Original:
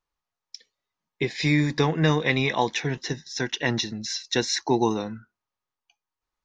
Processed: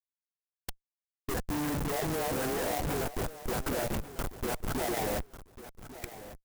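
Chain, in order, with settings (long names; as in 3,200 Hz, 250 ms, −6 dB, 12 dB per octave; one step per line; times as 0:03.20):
low-shelf EQ 110 Hz −8.5 dB
in parallel at −3 dB: upward compression, threshold −24 dBFS
on the sum: all-pass dispersion highs, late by 145 ms, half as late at 380 Hz
envelope filter 770–4,100 Hz, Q 4.1, down, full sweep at −21 dBFS
far-end echo of a speakerphone 130 ms, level −21 dB
comparator with hysteresis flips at −41 dBFS
on a send: repeating echo 1,146 ms, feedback 23%, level −14.5 dB
on the sum: formants moved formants −4 semitones
converter with an unsteady clock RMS 0.066 ms
level +3.5 dB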